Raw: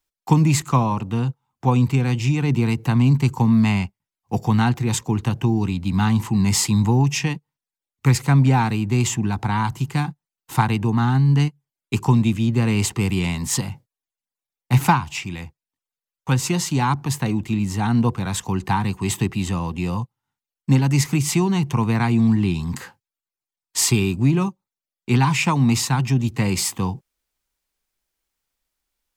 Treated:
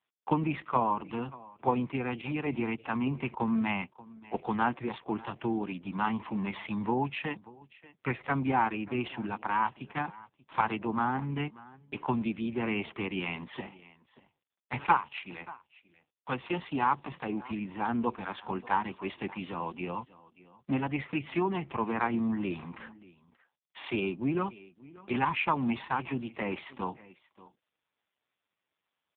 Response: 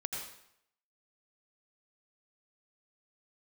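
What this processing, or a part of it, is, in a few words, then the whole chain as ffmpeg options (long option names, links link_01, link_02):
satellite phone: -af "highpass=360,lowpass=3300,aecho=1:1:584:0.0944,volume=-3dB" -ar 8000 -c:a libopencore_amrnb -b:a 4750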